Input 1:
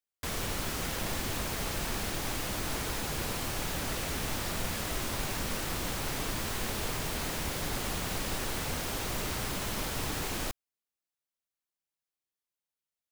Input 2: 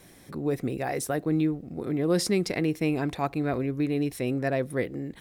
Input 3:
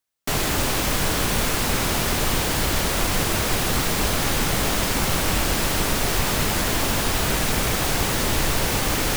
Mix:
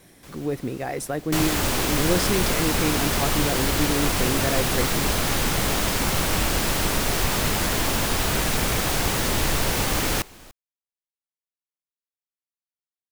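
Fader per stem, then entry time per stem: −12.0, +0.5, −1.0 decibels; 0.00, 0.00, 1.05 seconds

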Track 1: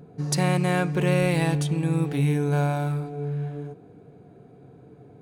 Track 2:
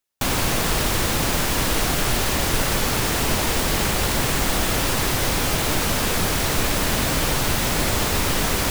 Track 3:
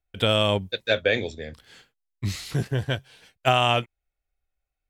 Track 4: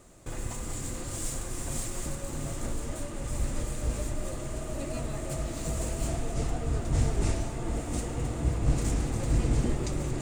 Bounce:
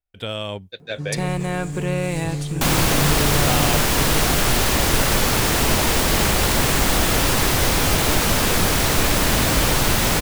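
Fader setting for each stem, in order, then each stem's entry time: −1.5, +3.0, −7.0, −3.5 decibels; 0.80, 2.40, 0.00, 0.90 seconds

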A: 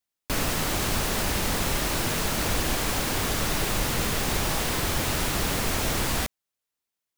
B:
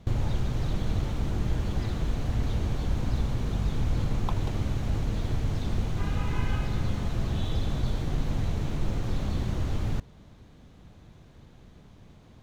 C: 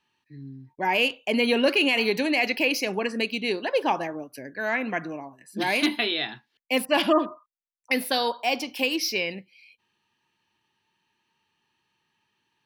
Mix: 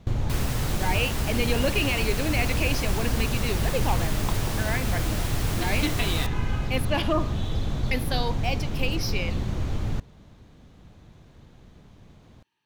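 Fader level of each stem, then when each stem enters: −6.5, +1.0, −5.0 decibels; 0.00, 0.00, 0.00 seconds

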